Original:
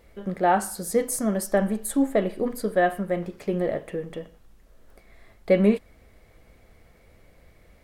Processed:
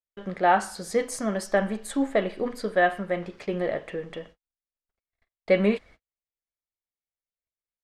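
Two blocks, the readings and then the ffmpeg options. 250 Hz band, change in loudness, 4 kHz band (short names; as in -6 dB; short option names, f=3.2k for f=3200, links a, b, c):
-4.0 dB, -1.5 dB, +3.0 dB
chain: -af "lowpass=5k,agate=range=-49dB:threshold=-44dB:ratio=16:detection=peak,tiltshelf=f=700:g=-5"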